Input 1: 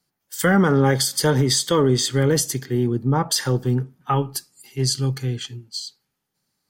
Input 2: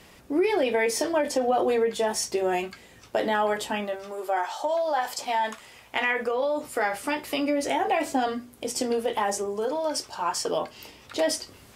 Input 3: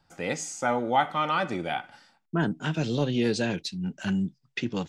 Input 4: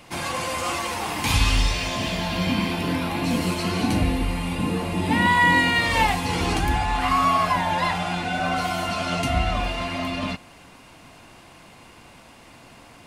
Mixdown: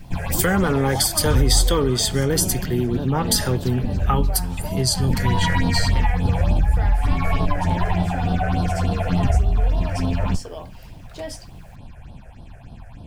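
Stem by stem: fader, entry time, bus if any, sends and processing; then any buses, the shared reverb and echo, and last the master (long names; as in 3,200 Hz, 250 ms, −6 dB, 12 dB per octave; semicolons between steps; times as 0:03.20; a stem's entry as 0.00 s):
+2.0 dB, 0.00 s, bus B, no send, no echo send, high-shelf EQ 4,400 Hz +9.5 dB; parametric band 6,500 Hz −5 dB 0.51 octaves
−8.5 dB, 0.00 s, bus B, no send, no echo send, no processing
−5.0 dB, 0.00 s, bus A, no send, echo send −10.5 dB, no processing
+2.5 dB, 0.00 s, bus A, no send, no echo send, lower of the sound and its delayed copy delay 1.2 ms; spectral tilt −3.5 dB per octave; automatic ducking −12 dB, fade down 2.00 s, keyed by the third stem
bus A: 0.0 dB, all-pass phaser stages 6, 3.4 Hz, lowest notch 250–2,100 Hz; downward compressor 6 to 1, threshold −14 dBFS, peak gain reduction 12 dB
bus B: 0.0 dB, bit reduction 10 bits; downward compressor 2 to 1, threshold −20 dBFS, peak gain reduction 6 dB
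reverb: not used
echo: single-tap delay 587 ms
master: no processing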